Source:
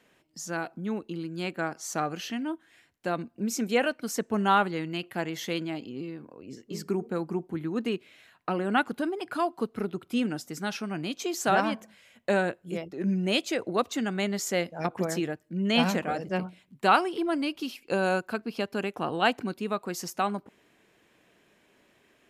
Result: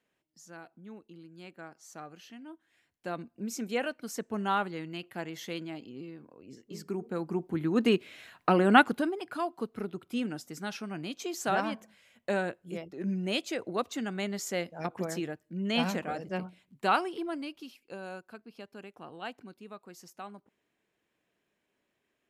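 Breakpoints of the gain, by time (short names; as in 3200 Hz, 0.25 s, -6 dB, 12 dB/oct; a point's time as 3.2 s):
2.4 s -15.5 dB
3.11 s -6.5 dB
6.9 s -6.5 dB
7.92 s +5.5 dB
8.78 s +5.5 dB
9.27 s -5 dB
17.09 s -5 dB
17.98 s -16 dB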